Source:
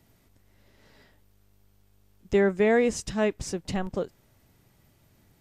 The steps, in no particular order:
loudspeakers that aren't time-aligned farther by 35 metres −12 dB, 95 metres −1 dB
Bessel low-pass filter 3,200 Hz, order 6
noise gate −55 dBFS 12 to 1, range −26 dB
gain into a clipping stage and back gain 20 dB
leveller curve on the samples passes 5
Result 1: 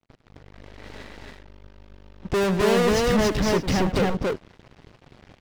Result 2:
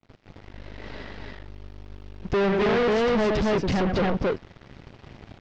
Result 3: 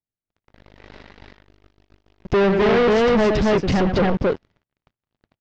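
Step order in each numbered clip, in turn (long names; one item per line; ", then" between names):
gain into a clipping stage and back, then Bessel low-pass filter, then leveller curve on the samples, then noise gate, then loudspeakers that aren't time-aligned
loudspeakers that aren't time-aligned, then gain into a clipping stage and back, then leveller curve on the samples, then noise gate, then Bessel low-pass filter
gain into a clipping stage and back, then loudspeakers that aren't time-aligned, then leveller curve on the samples, then Bessel low-pass filter, then noise gate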